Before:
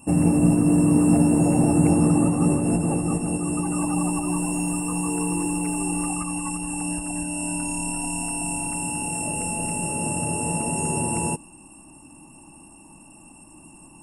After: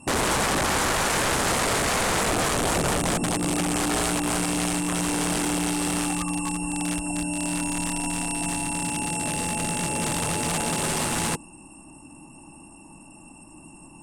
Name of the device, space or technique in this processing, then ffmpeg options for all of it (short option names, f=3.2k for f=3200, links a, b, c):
overflowing digital effects unit: -af "aeval=exprs='(mod(8.91*val(0)+1,2)-1)/8.91':c=same,lowpass=8.8k,volume=1.5dB"